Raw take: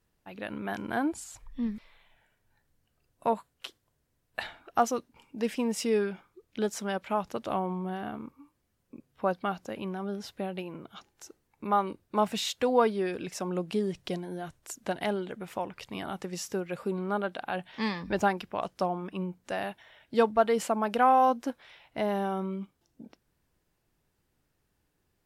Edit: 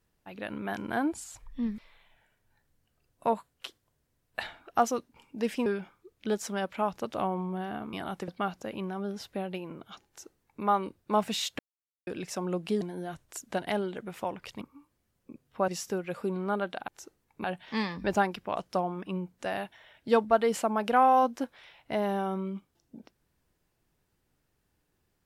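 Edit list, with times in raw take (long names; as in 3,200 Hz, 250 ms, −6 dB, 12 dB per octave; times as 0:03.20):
0:05.66–0:05.98: remove
0:08.25–0:09.32: swap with 0:15.95–0:16.30
0:11.11–0:11.67: duplicate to 0:17.50
0:12.63–0:13.11: silence
0:13.85–0:14.15: remove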